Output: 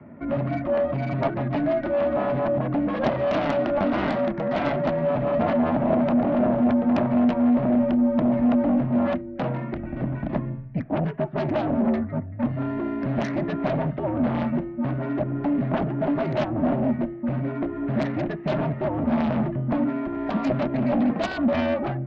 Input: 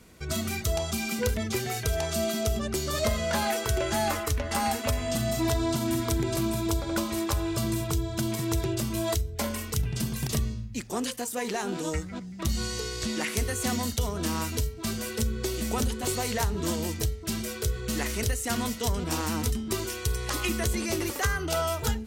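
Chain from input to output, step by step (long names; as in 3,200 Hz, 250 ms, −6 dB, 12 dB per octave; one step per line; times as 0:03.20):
single-sideband voice off tune −89 Hz 160–2,200 Hz
harmonic generator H 6 −16 dB, 7 −6 dB, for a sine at −14.5 dBFS
hollow resonant body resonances 230/610 Hz, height 18 dB, ringing for 25 ms
level −7.5 dB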